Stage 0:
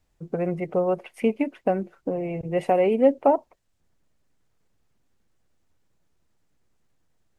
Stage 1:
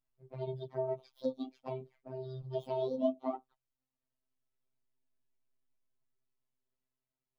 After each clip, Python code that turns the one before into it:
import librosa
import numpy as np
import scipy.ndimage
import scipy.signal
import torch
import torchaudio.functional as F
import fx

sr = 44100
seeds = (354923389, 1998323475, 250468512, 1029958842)

y = fx.partial_stretch(x, sr, pct=124)
y = fx.env_flanger(y, sr, rest_ms=4.7, full_db=-24.0)
y = fx.robotise(y, sr, hz=130.0)
y = F.gain(torch.from_numpy(y), -8.5).numpy()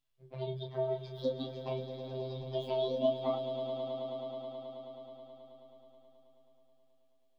y = fx.peak_eq(x, sr, hz=3400.0, db=10.0, octaves=0.96)
y = fx.doubler(y, sr, ms=29.0, db=-6.5)
y = fx.echo_swell(y, sr, ms=107, loudest=5, wet_db=-13.5)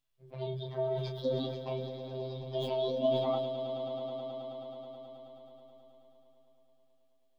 y = fx.sustainer(x, sr, db_per_s=38.0)